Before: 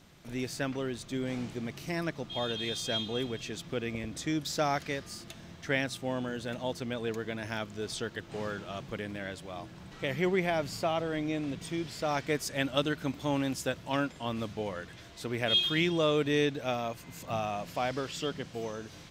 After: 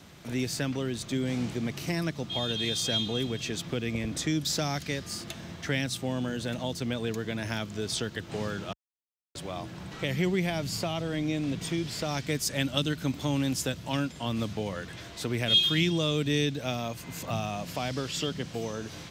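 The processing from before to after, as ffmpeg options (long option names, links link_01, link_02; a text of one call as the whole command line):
ffmpeg -i in.wav -filter_complex "[0:a]asplit=3[link_01][link_02][link_03];[link_01]atrim=end=8.73,asetpts=PTS-STARTPTS,afade=type=out:start_time=8.726:duration=0.004:curve=hsin[link_04];[link_02]atrim=start=8.73:end=9.35,asetpts=PTS-STARTPTS,volume=0[link_05];[link_03]atrim=start=9.35,asetpts=PTS-STARTPTS,afade=type=in:duration=0.004:curve=hsin[link_06];[link_04][link_05][link_06]concat=n=3:v=0:a=1,highpass=48,acrossover=split=250|3000[link_07][link_08][link_09];[link_08]acompressor=threshold=-41dB:ratio=4[link_10];[link_07][link_10][link_09]amix=inputs=3:normalize=0,volume=7dB" out.wav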